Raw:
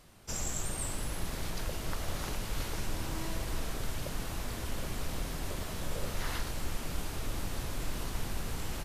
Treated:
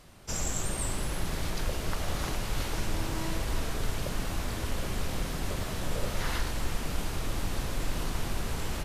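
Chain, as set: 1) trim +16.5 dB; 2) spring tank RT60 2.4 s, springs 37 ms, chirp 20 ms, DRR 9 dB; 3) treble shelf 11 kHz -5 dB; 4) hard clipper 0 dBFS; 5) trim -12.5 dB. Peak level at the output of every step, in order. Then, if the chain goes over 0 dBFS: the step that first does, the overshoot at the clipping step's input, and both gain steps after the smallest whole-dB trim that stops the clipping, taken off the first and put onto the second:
-5.0 dBFS, -5.0 dBFS, -5.0 dBFS, -5.0 dBFS, -17.5 dBFS; nothing clips

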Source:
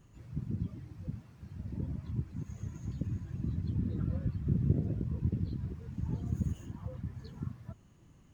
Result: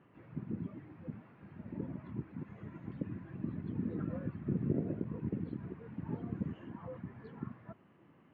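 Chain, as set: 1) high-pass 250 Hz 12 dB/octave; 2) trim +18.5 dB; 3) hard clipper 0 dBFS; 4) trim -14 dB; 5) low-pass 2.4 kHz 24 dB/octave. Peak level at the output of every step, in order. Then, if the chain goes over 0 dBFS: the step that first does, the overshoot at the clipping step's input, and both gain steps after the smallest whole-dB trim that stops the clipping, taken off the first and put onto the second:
-23.5 dBFS, -5.0 dBFS, -5.0 dBFS, -19.0 dBFS, -19.0 dBFS; nothing clips

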